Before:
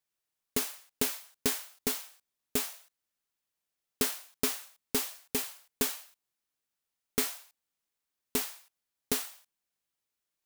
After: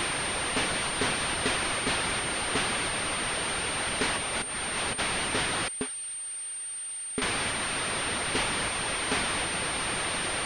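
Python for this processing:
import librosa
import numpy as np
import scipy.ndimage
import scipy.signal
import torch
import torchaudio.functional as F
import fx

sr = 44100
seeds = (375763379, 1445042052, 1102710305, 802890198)

y = x + 0.5 * 10.0 ** (-22.5 / 20.0) * np.diff(np.sign(x), prepend=np.sign(x[:1]))
y = fx.dereverb_blind(y, sr, rt60_s=0.55)
y = fx.over_compress(y, sr, threshold_db=-29.0, ratio=-0.5, at=(4.16, 4.98), fade=0.02)
y = fx.air_absorb(y, sr, metres=130.0, at=(5.68, 7.22))
y = fx.pwm(y, sr, carrier_hz=8800.0)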